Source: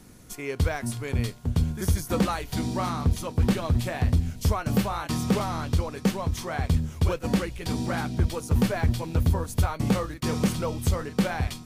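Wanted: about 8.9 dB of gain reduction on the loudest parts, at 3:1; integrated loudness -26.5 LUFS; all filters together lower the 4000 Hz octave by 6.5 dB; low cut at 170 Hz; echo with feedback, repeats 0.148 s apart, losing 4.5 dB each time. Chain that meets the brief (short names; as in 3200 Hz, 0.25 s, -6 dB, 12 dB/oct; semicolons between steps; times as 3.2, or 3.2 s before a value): HPF 170 Hz; bell 4000 Hz -8.5 dB; compressor 3:1, threshold -32 dBFS; feedback echo 0.148 s, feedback 60%, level -4.5 dB; gain +7.5 dB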